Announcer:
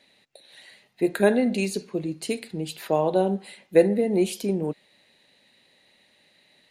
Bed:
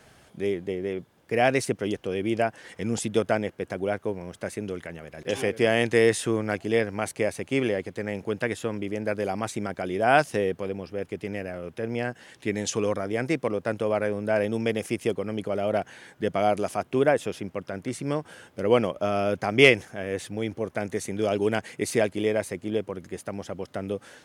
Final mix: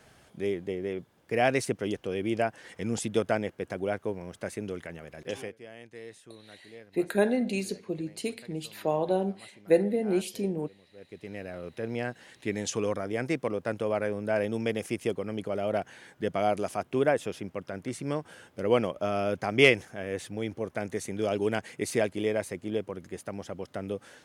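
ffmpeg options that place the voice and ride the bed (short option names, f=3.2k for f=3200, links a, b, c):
-filter_complex "[0:a]adelay=5950,volume=-5dB[a];[1:a]volume=18.5dB,afade=t=out:st=5.13:d=0.45:silence=0.0794328,afade=t=in:st=10.91:d=0.71:silence=0.0841395[b];[a][b]amix=inputs=2:normalize=0"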